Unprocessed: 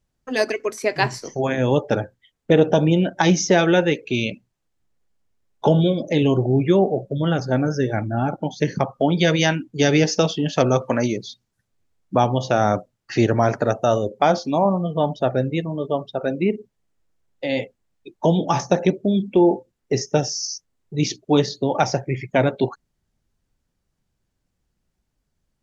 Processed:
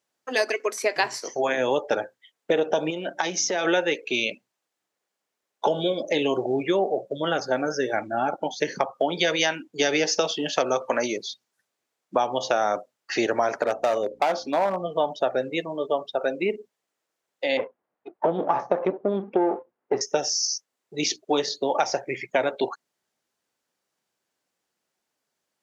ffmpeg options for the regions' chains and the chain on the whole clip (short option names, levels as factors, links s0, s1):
-filter_complex "[0:a]asettb=1/sr,asplit=3[s0][s1][s2];[s0]atrim=end=2.904[s3];[s1]atrim=start=2.9:end=3.65,asetpts=PTS-STARTPTS,afade=t=in:d=0.004:c=qsin,afade=t=out:st=0.746:d=0.004:c=qsin,bandreject=f=50:t=h:w=6,bandreject=f=100:t=h:w=6,bandreject=f=150:t=h:w=6,bandreject=f=200:t=h:w=6,bandreject=f=250:t=h:w=6,bandreject=f=300:t=h:w=6,acompressor=threshold=0.0891:ratio=6:attack=3.2:release=140:knee=1:detection=peak[s4];[s2]atrim=start=3.646[s5];[s3][s4]acrossfade=d=0.004:c1=hsin:c2=qsin[s6];[s6][s5]acrossfade=d=0.004:c1=qsin:c2=hsin,asettb=1/sr,asplit=3[s7][s8][s9];[s7]atrim=end=13.624[s10];[s8]atrim=start=13.62:end=14.92,asetpts=PTS-STARTPTS,afade=t=in:d=0.004:c=qsin,afade=t=out:st=1.296:d=0.004:c=qsin,highshelf=f=5000:g=-8,aeval=exprs='val(0)+0.0112*(sin(2*PI*60*n/s)+sin(2*PI*2*60*n/s)/2+sin(2*PI*3*60*n/s)/3+sin(2*PI*4*60*n/s)/4+sin(2*PI*5*60*n/s)/5)':c=same,volume=4.73,asoftclip=hard,volume=0.211[s11];[s9]atrim=start=14.916[s12];[s10][s11]acrossfade=d=0.004:c1=hsin:c2=qsin[s13];[s13][s12]acrossfade=d=0.004:c1=qsin:c2=hsin,asettb=1/sr,asplit=3[s14][s15][s16];[s14]atrim=end=17.574[s17];[s15]atrim=start=17.57:end=20.01,asetpts=PTS-STARTPTS,afade=t=in:d=0.004:c=qsin,afade=t=out:st=2.436:d=0.004:c=qsin,aeval=exprs='if(lt(val(0),0),0.447*val(0),val(0))':c=same,lowpass=1200,acontrast=33[s18];[s16]atrim=start=20.006[s19];[s17][s18]acrossfade=d=0.004:c1=hsin:c2=qsin[s20];[s20][s19]acrossfade=d=0.004:c1=qsin:c2=hsin,highpass=470,acompressor=threshold=0.0891:ratio=5,volume=1.33"